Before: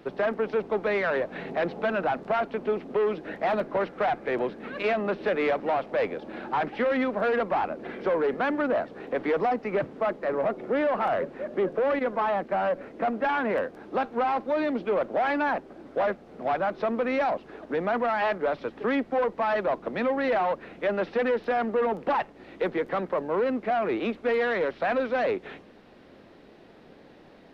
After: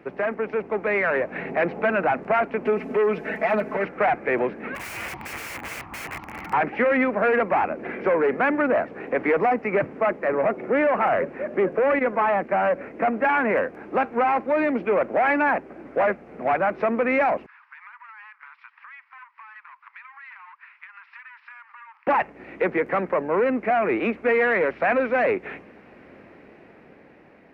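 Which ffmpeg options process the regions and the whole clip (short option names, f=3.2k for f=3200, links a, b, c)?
-filter_complex "[0:a]asettb=1/sr,asplit=3[a][b][c];[a]atrim=end=2.654[d];[b]atrim=start=2.65:end=3.85,asetpts=PTS-STARTPTS,afade=t=in:d=0.004:c=qsin,afade=t=out:st=1.196:d=0.004:c=qsin,highshelf=f=4.3k:g=11,acompressor=threshold=-31dB:ratio=2:attack=3.2:release=140:knee=1:detection=peak,aecho=1:1:4.6:0.91,atrim=end_sample=52920[e];[c]atrim=start=3.846[f];[d][e]acrossfade=d=0.004:c1=hsin:c2=qsin[g];[g][f]acrossfade=d=0.004:c1=qsin:c2=hsin,asettb=1/sr,asplit=3[h][i][j];[h]atrim=end=4.754[k];[i]atrim=start=4.75:end=6.53,asetpts=PTS-STARTPTS,afade=t=in:d=0.004:c=qsin,afade=t=out:st=1.776:d=0.004:c=qsin,bandreject=f=940:w=12,aeval=exprs='val(0)*sin(2*PI*540*n/s)':c=same,aeval=exprs='(mod(37.6*val(0)+1,2)-1)/37.6':c=same[l];[j]atrim=start=6.526[m];[k][l]acrossfade=d=0.004:c1=hsin:c2=qsin[n];[n][m]acrossfade=d=0.004:c1=qsin:c2=hsin,asettb=1/sr,asplit=3[o][p][q];[o]atrim=end=17.464[r];[p]atrim=start=17.46:end=22.07,asetpts=PTS-STARTPTS,afade=t=in:d=0.004:c=qsin,afade=t=out:st=4.606:d=0.004:c=qsin,agate=range=-7dB:threshold=-34dB:ratio=16:release=100:detection=peak,asuperpass=centerf=2300:order=20:qfactor=0.51,acompressor=threshold=-47dB:ratio=12:attack=3.2:release=140:knee=1:detection=peak[s];[q]atrim=start=22.066[t];[r][s]acrossfade=d=0.004:c1=hsin:c2=qsin[u];[u][t]acrossfade=d=0.004:c1=qsin:c2=hsin,dynaudnorm=f=240:g=9:m=4dB,highpass=45,highshelf=f=2.9k:t=q:w=3:g=-7"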